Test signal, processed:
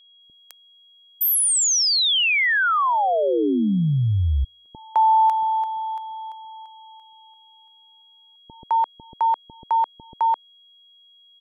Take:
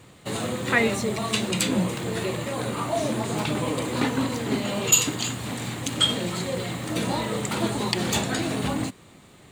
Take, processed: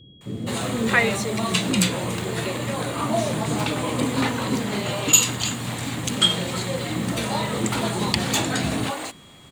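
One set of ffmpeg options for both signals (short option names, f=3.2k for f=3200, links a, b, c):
-filter_complex "[0:a]acrossover=split=390[a][b];[b]adelay=210[c];[a][c]amix=inputs=2:normalize=0,aeval=exprs='val(0)+0.002*sin(2*PI*3300*n/s)':c=same,volume=3dB"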